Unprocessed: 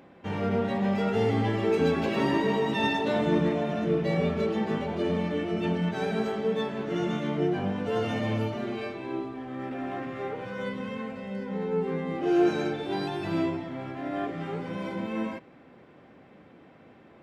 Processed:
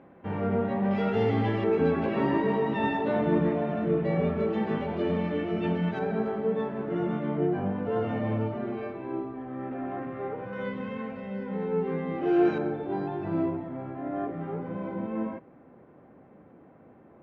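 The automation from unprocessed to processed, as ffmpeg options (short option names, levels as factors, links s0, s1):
-af "asetnsamples=n=441:p=0,asendcmd='0.91 lowpass f 3300;1.64 lowpass f 1900;4.53 lowpass f 2800;5.99 lowpass f 1500;10.53 lowpass f 2500;12.58 lowpass f 1200',lowpass=1700"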